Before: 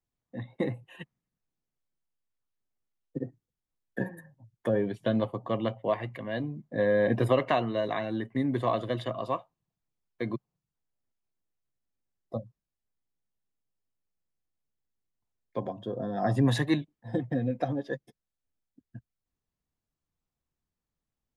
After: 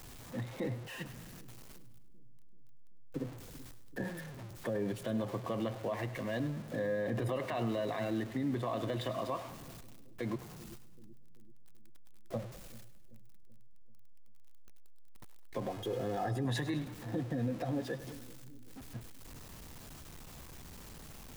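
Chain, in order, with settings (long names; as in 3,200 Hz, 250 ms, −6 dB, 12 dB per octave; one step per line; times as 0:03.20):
converter with a step at zero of −39.5 dBFS
0:15.70–0:16.45: comb filter 2.4 ms, depth 58%
brickwall limiter −24 dBFS, peak gain reduction 11.5 dB
on a send: echo with a time of its own for lows and highs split 370 Hz, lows 385 ms, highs 102 ms, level −14.5 dB
on the sum: level −3 dB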